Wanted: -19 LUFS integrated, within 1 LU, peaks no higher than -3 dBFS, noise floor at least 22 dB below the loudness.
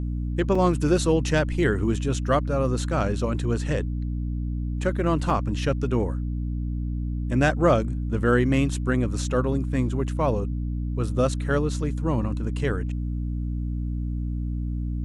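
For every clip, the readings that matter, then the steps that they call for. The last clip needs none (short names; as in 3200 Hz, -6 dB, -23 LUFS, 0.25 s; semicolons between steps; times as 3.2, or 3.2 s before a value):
dropouts 2; longest dropout 4.2 ms; hum 60 Hz; harmonics up to 300 Hz; hum level -25 dBFS; loudness -25.5 LUFS; peak -7.5 dBFS; loudness target -19.0 LUFS
-> interpolate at 0.55/5.3, 4.2 ms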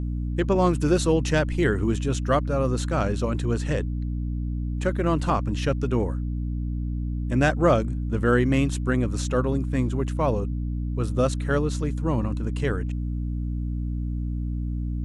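dropouts 0; hum 60 Hz; harmonics up to 300 Hz; hum level -25 dBFS
-> de-hum 60 Hz, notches 5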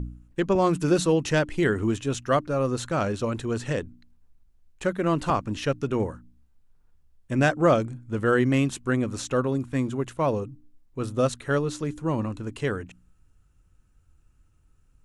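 hum none; loudness -26.0 LUFS; peak -9.0 dBFS; loudness target -19.0 LUFS
-> gain +7 dB; limiter -3 dBFS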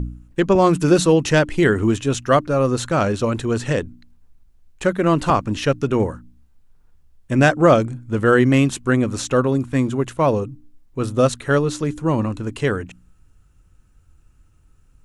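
loudness -19.0 LUFS; peak -3.0 dBFS; noise floor -55 dBFS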